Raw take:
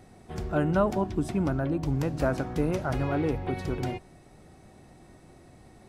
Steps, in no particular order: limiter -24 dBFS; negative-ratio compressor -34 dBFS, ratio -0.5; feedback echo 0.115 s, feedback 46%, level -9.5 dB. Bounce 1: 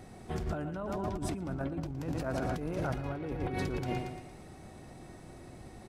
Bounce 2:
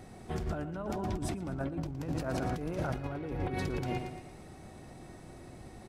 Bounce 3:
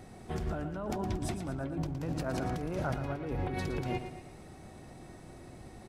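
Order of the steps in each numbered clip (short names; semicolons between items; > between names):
feedback echo > limiter > negative-ratio compressor; limiter > feedback echo > negative-ratio compressor; limiter > negative-ratio compressor > feedback echo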